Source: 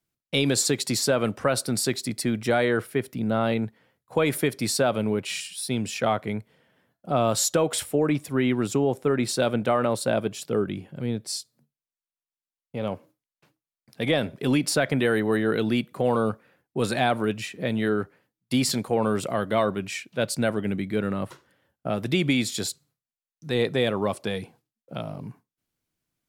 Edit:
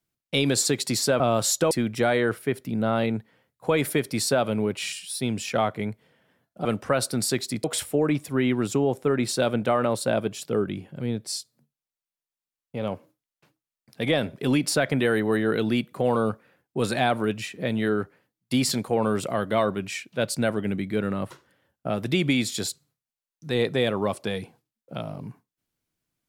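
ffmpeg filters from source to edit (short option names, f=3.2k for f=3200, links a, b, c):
-filter_complex "[0:a]asplit=5[a][b][c][d][e];[a]atrim=end=1.202[f];[b]atrim=start=7.128:end=7.642[g];[c]atrim=start=2.188:end=7.132[h];[d]atrim=start=1.198:end=2.192[i];[e]atrim=start=7.638[j];[f][g]acrossfade=d=0.004:c1=hsin:c2=hsin[k];[k][h]acrossfade=d=0.004:c1=hsin:c2=hsin[l];[l][i]acrossfade=d=0.004:c1=hsin:c2=hsin[m];[m][j]acrossfade=d=0.004:c1=hsin:c2=hsin"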